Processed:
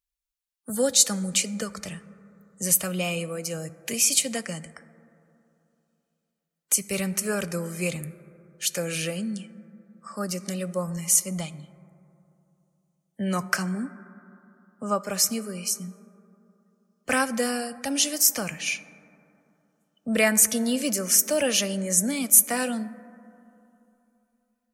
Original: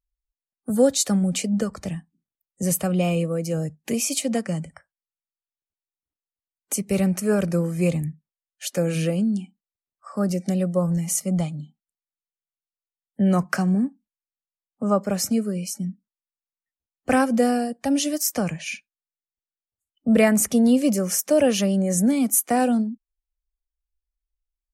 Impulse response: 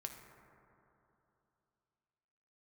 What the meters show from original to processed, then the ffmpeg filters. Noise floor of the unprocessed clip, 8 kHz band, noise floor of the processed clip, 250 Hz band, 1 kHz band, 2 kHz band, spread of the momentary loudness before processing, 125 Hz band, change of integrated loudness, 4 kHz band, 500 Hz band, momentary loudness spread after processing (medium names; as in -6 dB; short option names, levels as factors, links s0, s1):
under -85 dBFS, +5.0 dB, -79 dBFS, -8.5 dB, -4.5 dB, +2.5 dB, 12 LU, -9.0 dB, -1.5 dB, +4.5 dB, -6.0 dB, 15 LU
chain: -filter_complex "[0:a]tiltshelf=f=920:g=-7.5,bandreject=f=750:w=12,asplit=2[s0][s1];[1:a]atrim=start_sample=2205[s2];[s1][s2]afir=irnorm=-1:irlink=0,volume=0.631[s3];[s0][s3]amix=inputs=2:normalize=0,volume=0.562"